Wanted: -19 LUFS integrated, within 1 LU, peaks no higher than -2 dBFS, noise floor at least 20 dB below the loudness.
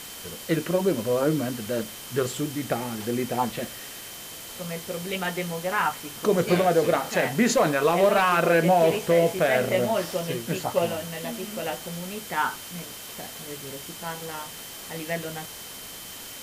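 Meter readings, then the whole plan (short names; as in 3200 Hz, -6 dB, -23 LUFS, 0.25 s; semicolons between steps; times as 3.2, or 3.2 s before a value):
steady tone 3100 Hz; tone level -47 dBFS; noise floor -40 dBFS; noise floor target -46 dBFS; loudness -25.5 LUFS; peak -10.0 dBFS; loudness target -19.0 LUFS
-> notch 3100 Hz, Q 30; noise print and reduce 6 dB; gain +6.5 dB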